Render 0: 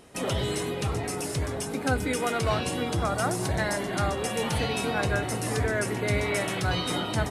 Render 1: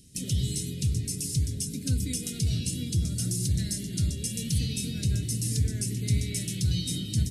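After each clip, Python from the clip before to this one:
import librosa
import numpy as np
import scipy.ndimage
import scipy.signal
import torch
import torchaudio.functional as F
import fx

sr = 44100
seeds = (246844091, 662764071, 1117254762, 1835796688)

y = scipy.signal.sosfilt(scipy.signal.cheby1(2, 1.0, [160.0, 5300.0], 'bandstop', fs=sr, output='sos'), x)
y = y * 10.0 ** (4.0 / 20.0)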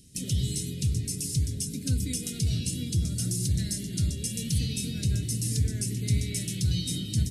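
y = x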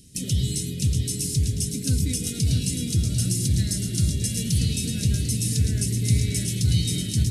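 y = fx.echo_feedback(x, sr, ms=636, feedback_pct=42, wet_db=-6.5)
y = y * 10.0 ** (4.0 / 20.0)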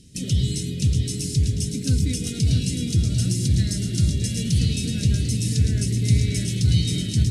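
y = fx.air_absorb(x, sr, metres=53.0)
y = y * 10.0 ** (2.5 / 20.0)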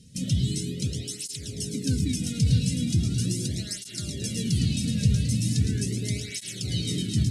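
y = fx.flanger_cancel(x, sr, hz=0.39, depth_ms=3.1)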